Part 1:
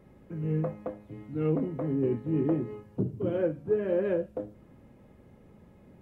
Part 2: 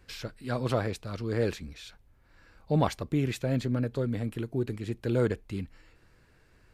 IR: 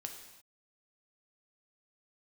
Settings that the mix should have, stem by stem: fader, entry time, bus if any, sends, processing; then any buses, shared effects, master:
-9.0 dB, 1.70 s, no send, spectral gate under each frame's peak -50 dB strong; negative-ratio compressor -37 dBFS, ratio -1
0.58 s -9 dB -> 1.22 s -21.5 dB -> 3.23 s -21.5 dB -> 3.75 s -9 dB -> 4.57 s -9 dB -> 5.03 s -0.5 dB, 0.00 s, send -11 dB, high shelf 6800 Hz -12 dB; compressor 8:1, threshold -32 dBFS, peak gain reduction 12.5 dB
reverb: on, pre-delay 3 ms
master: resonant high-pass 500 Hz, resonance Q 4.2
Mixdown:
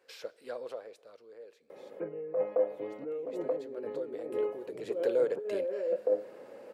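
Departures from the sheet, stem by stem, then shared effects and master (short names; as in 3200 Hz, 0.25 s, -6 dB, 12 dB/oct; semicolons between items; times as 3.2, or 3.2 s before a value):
stem 1 -9.0 dB -> -1.5 dB; stem 2: missing high shelf 6800 Hz -12 dB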